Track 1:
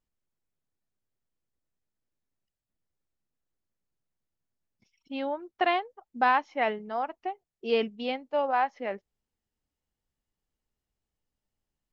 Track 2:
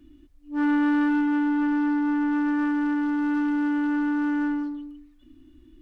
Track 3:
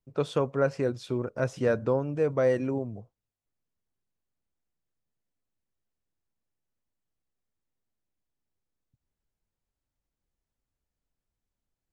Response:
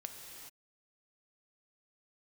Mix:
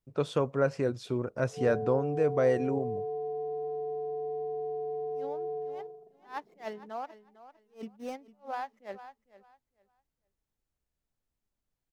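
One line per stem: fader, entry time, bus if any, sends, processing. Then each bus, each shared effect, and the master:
−6.0 dB, 0.00 s, bus A, no send, echo send −16.5 dB, running median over 15 samples; level that may rise only so fast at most 260 dB per second
−5.0 dB, 1.05 s, bus A, no send, no echo send, sub-harmonics by changed cycles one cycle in 2, inverted; elliptic band-pass filter 200–710 Hz, stop band 40 dB
−1.5 dB, 0.00 s, no bus, no send, no echo send, no processing
bus A: 0.0 dB, transient designer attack +1 dB, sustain −3 dB; downward compressor, threshold −32 dBFS, peak gain reduction 6.5 dB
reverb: not used
echo: repeating echo 453 ms, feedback 20%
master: no processing

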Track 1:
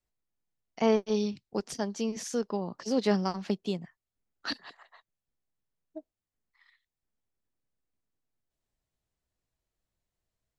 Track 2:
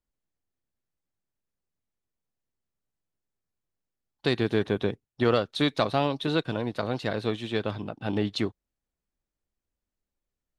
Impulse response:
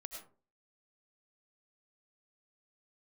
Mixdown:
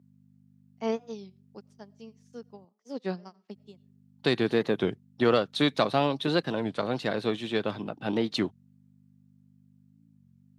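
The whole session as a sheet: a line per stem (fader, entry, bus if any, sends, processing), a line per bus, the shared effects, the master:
−4.5 dB, 0.00 s, send −19.5 dB, expander for the loud parts 2.5 to 1, over −42 dBFS; automatic ducking −7 dB, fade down 1.20 s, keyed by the second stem
+0.5 dB, 0.00 s, muted 0:02.65–0:03.54, no send, mains hum 50 Hz, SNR 21 dB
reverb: on, RT60 0.40 s, pre-delay 60 ms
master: high-pass filter 130 Hz 24 dB per octave; wow of a warped record 33 1/3 rpm, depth 160 cents

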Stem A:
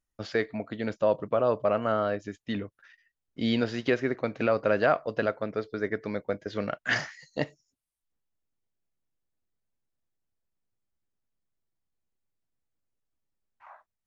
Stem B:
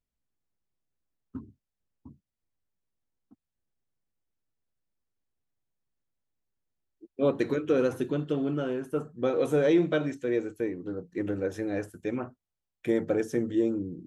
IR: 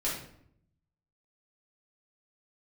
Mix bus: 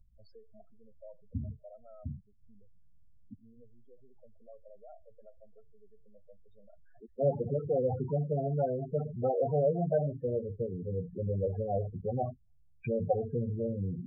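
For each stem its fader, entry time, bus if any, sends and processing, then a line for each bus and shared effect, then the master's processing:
−15.0 dB, 0.00 s, no send, brickwall limiter −18 dBFS, peak gain reduction 7.5 dB; automatic ducking −8 dB, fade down 0.95 s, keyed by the second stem
+1.5 dB, 0.00 s, no send, treble cut that deepens with the level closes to 1,700 Hz, closed at −26 dBFS; low-shelf EQ 270 Hz +10.5 dB; every bin compressed towards the loudest bin 2 to 1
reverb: not used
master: parametric band 730 Hz +5 dB 0.65 octaves; spectral peaks only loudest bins 8; phaser with its sweep stopped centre 760 Hz, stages 4

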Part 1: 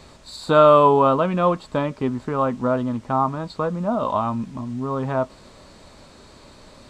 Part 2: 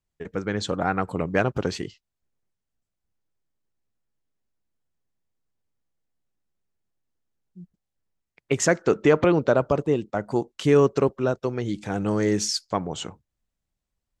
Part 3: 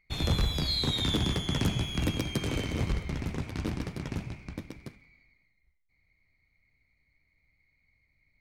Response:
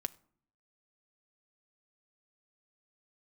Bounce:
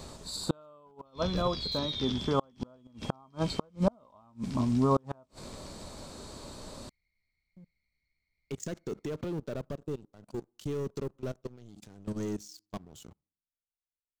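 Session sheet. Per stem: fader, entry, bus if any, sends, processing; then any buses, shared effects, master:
+2.0 dB, 0.00 s, no bus, no send, high-shelf EQ 7,100 Hz +7 dB; automatic ducking −13 dB, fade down 1.50 s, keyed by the second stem
−11.0 dB, 0.00 s, bus A, send −22 dB, output level in coarse steps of 23 dB; leveller curve on the samples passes 3
−8.0 dB, 0.95 s, bus A, send −4 dB, elliptic low-pass filter 5,700 Hz, stop band 40 dB; tilt shelving filter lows −5.5 dB
bus A: 0.0 dB, parametric band 820 Hz −11.5 dB 2.4 octaves; brickwall limiter −28.5 dBFS, peak gain reduction 7 dB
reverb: on, RT60 0.55 s, pre-delay 5 ms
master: gate with flip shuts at −14 dBFS, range −37 dB; parametric band 2,100 Hz −7.5 dB 1.3 octaves

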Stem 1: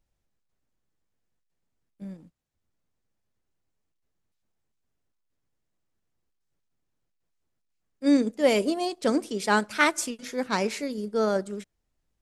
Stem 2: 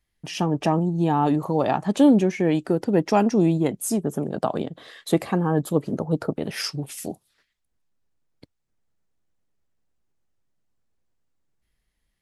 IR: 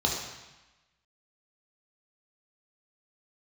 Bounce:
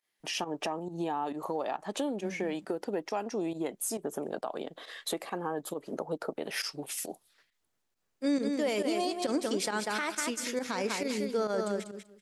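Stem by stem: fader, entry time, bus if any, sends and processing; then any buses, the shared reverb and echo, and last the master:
+2.0 dB, 0.20 s, no send, echo send −6.5 dB, low-shelf EQ 160 Hz −10 dB; downward compressor 3 to 1, threshold −26 dBFS, peak gain reduction 8.5 dB
+0.5 dB, 0.00 s, no send, no echo send, high-pass filter 410 Hz 12 dB per octave; downward compressor 5 to 1, threshold −31 dBFS, peak gain reduction 14 dB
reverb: not used
echo: repeating echo 193 ms, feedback 16%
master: fake sidechain pumping 136 BPM, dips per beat 1, −13 dB, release 73 ms; brickwall limiter −21 dBFS, peak gain reduction 10.5 dB

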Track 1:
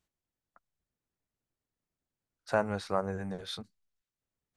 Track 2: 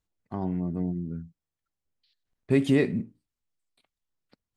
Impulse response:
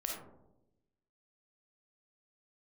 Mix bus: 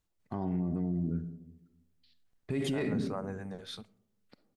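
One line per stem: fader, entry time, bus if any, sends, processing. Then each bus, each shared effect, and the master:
−4.5 dB, 0.20 s, send −21 dB, no processing
−0.5 dB, 0.00 s, send −8.5 dB, no processing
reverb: on, RT60 0.95 s, pre-delay 10 ms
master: brickwall limiter −24 dBFS, peak gain reduction 15 dB

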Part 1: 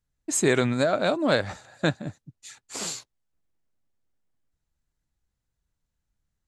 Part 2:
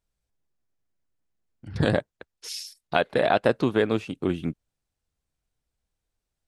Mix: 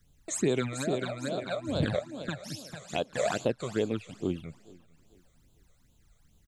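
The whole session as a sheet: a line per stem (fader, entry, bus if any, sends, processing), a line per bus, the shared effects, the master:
−3.5 dB, 0.00 s, no send, echo send −5 dB, multiband upward and downward compressor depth 70%; automatic ducking −18 dB, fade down 0.95 s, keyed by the second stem
−5.5 dB, 0.00 s, no send, echo send −23.5 dB, no processing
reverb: not used
echo: repeating echo 447 ms, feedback 37%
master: all-pass phaser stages 12, 2.4 Hz, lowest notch 270–1,900 Hz

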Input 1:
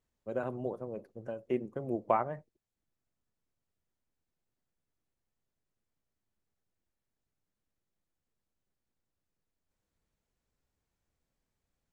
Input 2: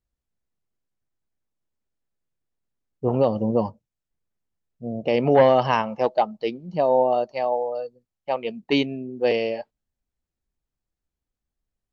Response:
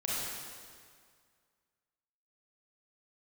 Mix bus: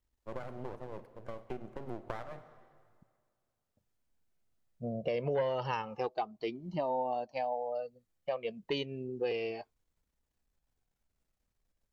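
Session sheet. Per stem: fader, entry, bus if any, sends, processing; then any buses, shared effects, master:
+0.5 dB, 0.00 s, send −18 dB, downward compressor 3 to 1, threshold −32 dBFS, peak gain reduction 8 dB; half-wave rectification
+2.0 dB, 0.00 s, muted 0:03.03–0:03.77, no send, flanger whose copies keep moving one way falling 0.3 Hz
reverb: on, RT60 2.0 s, pre-delay 28 ms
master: downward compressor 3 to 1, threshold −34 dBFS, peak gain reduction 15.5 dB

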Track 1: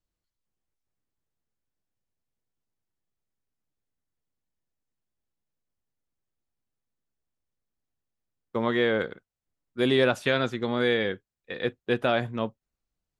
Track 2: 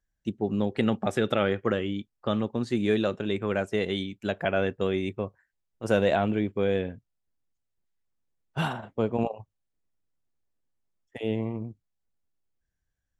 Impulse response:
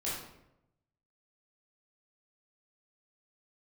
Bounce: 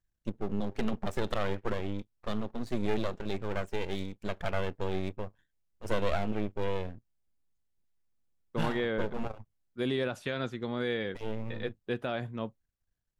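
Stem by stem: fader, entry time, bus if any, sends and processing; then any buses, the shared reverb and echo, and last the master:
−8.5 dB, 0.00 s, no send, brickwall limiter −13.5 dBFS, peak gain reduction 4.5 dB
−3.0 dB, 0.00 s, no send, half-wave rectification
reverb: not used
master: low-shelf EQ 240 Hz +5 dB

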